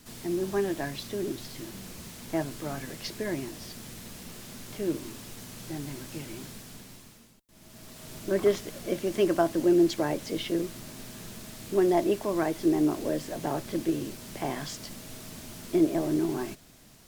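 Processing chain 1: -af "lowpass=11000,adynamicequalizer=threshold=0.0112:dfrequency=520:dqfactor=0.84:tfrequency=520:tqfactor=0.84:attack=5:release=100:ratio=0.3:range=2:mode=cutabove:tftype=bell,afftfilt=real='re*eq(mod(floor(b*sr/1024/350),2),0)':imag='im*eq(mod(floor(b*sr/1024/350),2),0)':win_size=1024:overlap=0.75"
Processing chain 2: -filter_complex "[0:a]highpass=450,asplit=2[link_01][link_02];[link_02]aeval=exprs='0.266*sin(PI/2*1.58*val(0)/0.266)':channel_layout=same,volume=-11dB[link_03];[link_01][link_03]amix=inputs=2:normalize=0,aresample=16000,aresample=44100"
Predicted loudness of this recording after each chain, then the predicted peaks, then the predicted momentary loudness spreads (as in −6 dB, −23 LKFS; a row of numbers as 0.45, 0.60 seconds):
−33.5, −29.5 LKFS; −14.0, −10.5 dBFS; 18, 18 LU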